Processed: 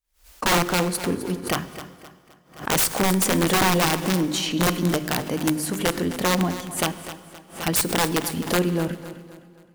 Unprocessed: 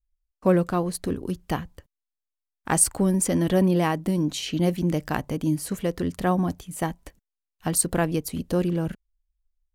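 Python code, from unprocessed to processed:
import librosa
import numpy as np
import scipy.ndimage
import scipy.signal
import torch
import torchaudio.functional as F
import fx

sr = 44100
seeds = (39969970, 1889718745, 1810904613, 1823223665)

y = fx.highpass(x, sr, hz=220.0, slope=6)
y = fx.hum_notches(y, sr, base_hz=50, count=8)
y = fx.cheby_harmonics(y, sr, harmonics=(2, 5, 8), levels_db=(-22, -29, -32), full_scale_db=-5.0)
y = (np.mod(10.0 ** (17.5 / 20.0) * y + 1.0, 2.0) - 1.0) / 10.0 ** (17.5 / 20.0)
y = fx.echo_feedback(y, sr, ms=260, feedback_pct=40, wet_db=-13.5)
y = fx.rev_plate(y, sr, seeds[0], rt60_s=2.1, hf_ratio=0.8, predelay_ms=0, drr_db=14.0)
y = fx.pre_swell(y, sr, db_per_s=150.0)
y = y * 10.0 ** (3.5 / 20.0)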